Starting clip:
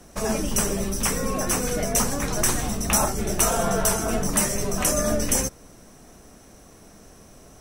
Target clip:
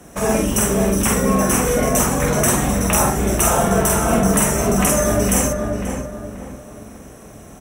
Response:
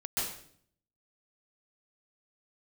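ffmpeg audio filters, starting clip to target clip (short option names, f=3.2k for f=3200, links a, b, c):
-filter_complex "[0:a]highpass=49,equalizer=f=4.7k:t=o:w=0.46:g=-12,asplit=2[a][b];[b]alimiter=limit=-15dB:level=0:latency=1:release=228,volume=1.5dB[c];[a][c]amix=inputs=2:normalize=0,asplit=2[d][e];[e]adelay=47,volume=-2.5dB[f];[d][f]amix=inputs=2:normalize=0,asplit=2[g][h];[h]adelay=534,lowpass=f=1.8k:p=1,volume=-4dB,asplit=2[i][j];[j]adelay=534,lowpass=f=1.8k:p=1,volume=0.38,asplit=2[k][l];[l]adelay=534,lowpass=f=1.8k:p=1,volume=0.38,asplit=2[m][n];[n]adelay=534,lowpass=f=1.8k:p=1,volume=0.38,asplit=2[o][p];[p]adelay=534,lowpass=f=1.8k:p=1,volume=0.38[q];[i][k][m][o][q]amix=inputs=5:normalize=0[r];[g][r]amix=inputs=2:normalize=0,volume=-1dB"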